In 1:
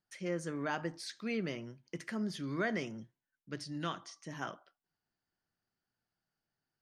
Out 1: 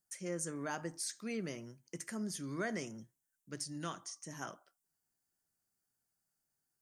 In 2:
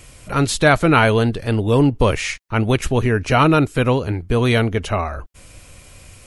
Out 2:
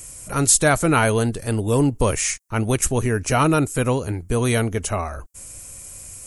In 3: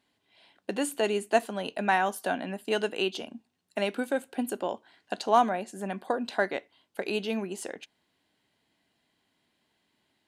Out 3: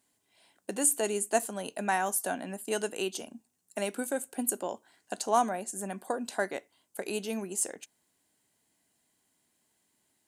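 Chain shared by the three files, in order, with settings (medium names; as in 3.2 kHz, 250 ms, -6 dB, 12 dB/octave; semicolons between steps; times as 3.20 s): resonant high shelf 5.4 kHz +13 dB, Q 1.5; trim -3.5 dB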